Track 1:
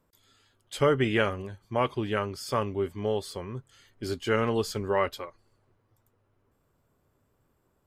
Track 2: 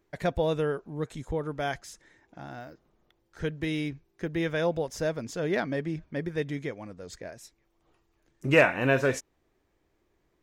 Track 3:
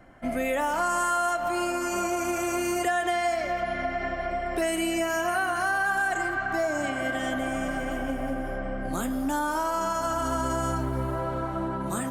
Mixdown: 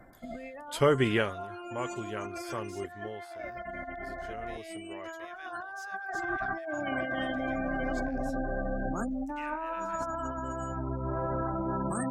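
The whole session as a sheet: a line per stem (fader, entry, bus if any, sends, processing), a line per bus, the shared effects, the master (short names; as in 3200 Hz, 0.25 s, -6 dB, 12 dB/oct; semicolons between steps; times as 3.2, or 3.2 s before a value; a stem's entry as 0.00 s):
1.14 s -0.5 dB -> 1.37 s -9.5 dB -> 2.89 s -9.5 dB -> 3.42 s -20 dB -> 5.19 s -20 dB -> 5.42 s -8.5 dB, 0.00 s, no send, bell 11000 Hz +5 dB 0.44 oct
-5.5 dB, 0.85 s, no send, compressor 3:1, threshold -39 dBFS, peak gain reduction 17.5 dB; HPF 1000 Hz 24 dB/oct
-3.0 dB, 0.00 s, no send, spectral gate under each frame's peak -20 dB strong; negative-ratio compressor -30 dBFS, ratio -0.5; auto duck -7 dB, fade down 0.25 s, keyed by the first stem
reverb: off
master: dry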